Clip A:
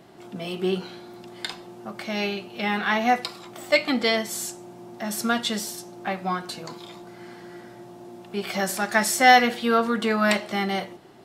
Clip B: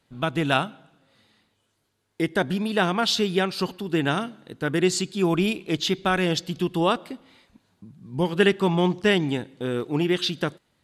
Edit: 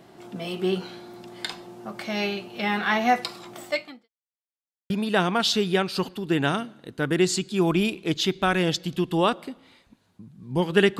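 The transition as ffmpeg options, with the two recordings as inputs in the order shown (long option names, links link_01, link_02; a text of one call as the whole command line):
ffmpeg -i cue0.wav -i cue1.wav -filter_complex "[0:a]apad=whole_dur=10.99,atrim=end=10.99,asplit=2[link_01][link_02];[link_01]atrim=end=4.09,asetpts=PTS-STARTPTS,afade=type=out:start_time=3.57:duration=0.52:curve=qua[link_03];[link_02]atrim=start=4.09:end=4.9,asetpts=PTS-STARTPTS,volume=0[link_04];[1:a]atrim=start=2.53:end=8.62,asetpts=PTS-STARTPTS,afade=type=in:duration=0.004:curve=hsin[link_05];[link_03][link_04][link_05]concat=n=3:v=0:a=1" out.wav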